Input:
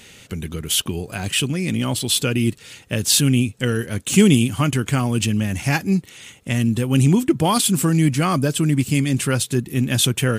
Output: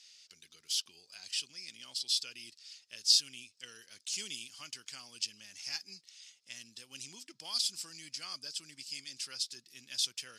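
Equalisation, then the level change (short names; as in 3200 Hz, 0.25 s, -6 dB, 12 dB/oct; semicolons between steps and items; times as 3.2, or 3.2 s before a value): band-pass 5000 Hz, Q 6.5; 0.0 dB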